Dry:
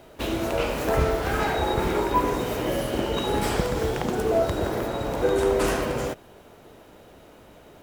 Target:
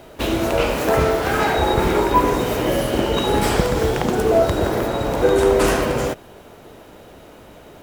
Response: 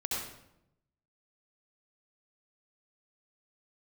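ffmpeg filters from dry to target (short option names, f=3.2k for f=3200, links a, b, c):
-filter_complex "[0:a]asettb=1/sr,asplit=3[a][b][c];[a]atrim=end=0.764[d];[b]atrim=start=0.76:end=1.55,asetpts=PTS-STARTPTS,afade=t=in:d=0.004:c=qsin,afade=t=out:st=0.786:d=0.004:c=qsin,highpass=f=110:p=1[e];[c]atrim=start=1.546[f];[d][e]acrossfade=d=0.004:c1=hsin:c2=qsin[g];[g][f]acrossfade=d=0.004:c1=qsin:c2=hsin,volume=6.5dB"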